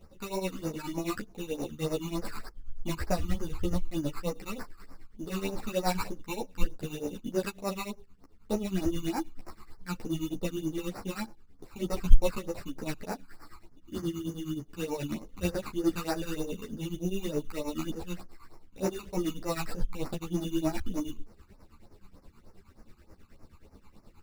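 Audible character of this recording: aliases and images of a low sample rate 3.2 kHz, jitter 0%; phasing stages 12, 3.3 Hz, lowest notch 550–3400 Hz; tremolo triangle 9.4 Hz, depth 90%; a shimmering, thickened sound

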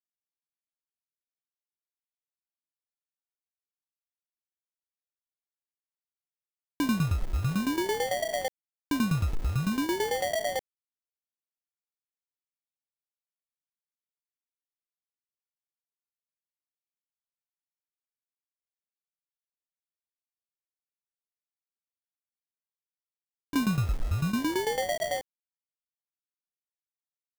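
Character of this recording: aliases and images of a low sample rate 1.3 kHz, jitter 0%; tremolo saw down 9 Hz, depth 85%; a quantiser's noise floor 8-bit, dither none

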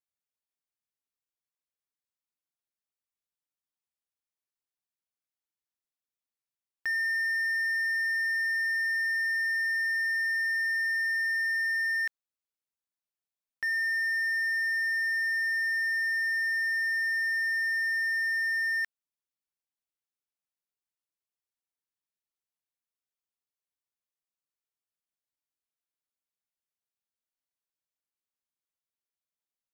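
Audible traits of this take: noise floor -94 dBFS; spectral tilt +3.0 dB/octave

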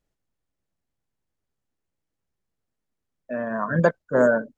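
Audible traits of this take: noise floor -82 dBFS; spectral tilt -3.5 dB/octave

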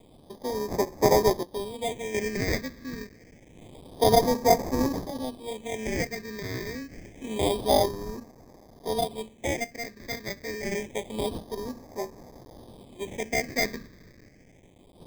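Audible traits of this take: a quantiser's noise floor 8-bit, dither triangular; random-step tremolo 1.4 Hz, depth 70%; aliases and images of a low sample rate 1.4 kHz, jitter 0%; phasing stages 6, 0.27 Hz, lowest notch 790–3000 Hz

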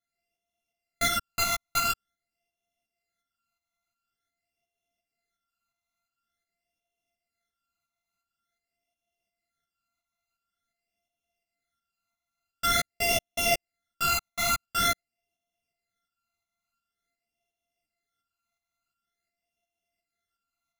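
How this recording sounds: a buzz of ramps at a fixed pitch in blocks of 64 samples; phasing stages 12, 0.47 Hz, lowest notch 530–1500 Hz; tremolo saw up 2.8 Hz, depth 50%; a shimmering, thickened sound

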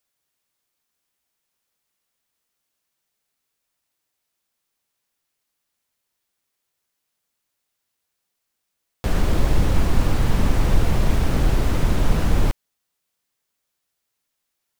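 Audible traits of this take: noise floor -78 dBFS; spectral tilt -6.0 dB/octave

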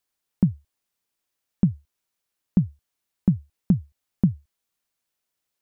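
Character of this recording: noise floor -82 dBFS; spectral tilt -13.0 dB/octave

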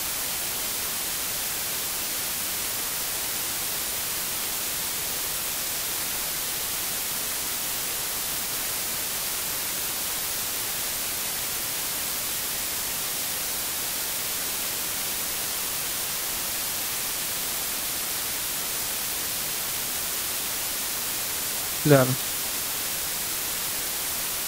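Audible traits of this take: tremolo triangle 11 Hz, depth 60%; a quantiser's noise floor 6-bit, dither triangular; Vorbis

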